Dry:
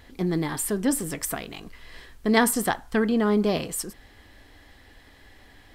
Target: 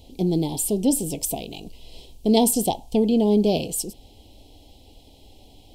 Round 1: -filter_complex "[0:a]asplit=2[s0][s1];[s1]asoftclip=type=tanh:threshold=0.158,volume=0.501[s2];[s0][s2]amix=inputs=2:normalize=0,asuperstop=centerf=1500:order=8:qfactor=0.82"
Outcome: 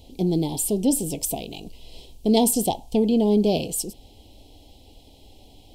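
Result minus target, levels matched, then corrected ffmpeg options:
saturation: distortion +17 dB
-filter_complex "[0:a]asplit=2[s0][s1];[s1]asoftclip=type=tanh:threshold=0.562,volume=0.501[s2];[s0][s2]amix=inputs=2:normalize=0,asuperstop=centerf=1500:order=8:qfactor=0.82"

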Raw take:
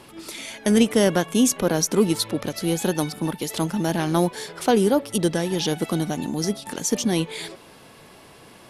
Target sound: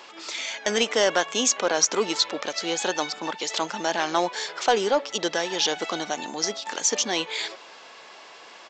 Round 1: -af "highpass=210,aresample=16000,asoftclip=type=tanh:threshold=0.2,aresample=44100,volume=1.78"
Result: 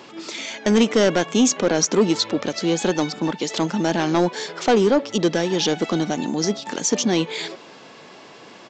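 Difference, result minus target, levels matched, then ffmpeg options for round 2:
250 Hz band +9.0 dB
-af "highpass=670,aresample=16000,asoftclip=type=tanh:threshold=0.2,aresample=44100,volume=1.78"

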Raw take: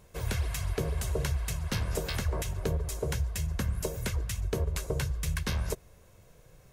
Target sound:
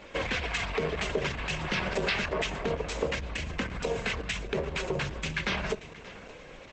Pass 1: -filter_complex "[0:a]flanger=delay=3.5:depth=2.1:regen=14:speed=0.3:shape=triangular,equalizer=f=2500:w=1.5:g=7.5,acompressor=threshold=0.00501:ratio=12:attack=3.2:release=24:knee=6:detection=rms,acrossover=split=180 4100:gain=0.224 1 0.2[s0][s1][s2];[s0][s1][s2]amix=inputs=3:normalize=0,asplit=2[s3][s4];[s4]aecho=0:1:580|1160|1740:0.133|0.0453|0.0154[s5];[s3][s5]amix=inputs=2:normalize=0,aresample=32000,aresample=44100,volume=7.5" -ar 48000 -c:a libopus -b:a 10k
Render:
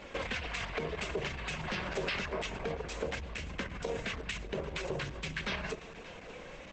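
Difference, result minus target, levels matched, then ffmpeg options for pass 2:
compression: peak gain reduction +6 dB
-filter_complex "[0:a]flanger=delay=3.5:depth=2.1:regen=14:speed=0.3:shape=triangular,equalizer=f=2500:w=1.5:g=7.5,acompressor=threshold=0.0106:ratio=12:attack=3.2:release=24:knee=6:detection=rms,acrossover=split=180 4100:gain=0.224 1 0.2[s0][s1][s2];[s0][s1][s2]amix=inputs=3:normalize=0,asplit=2[s3][s4];[s4]aecho=0:1:580|1160|1740:0.133|0.0453|0.0154[s5];[s3][s5]amix=inputs=2:normalize=0,aresample=32000,aresample=44100,volume=7.5" -ar 48000 -c:a libopus -b:a 10k

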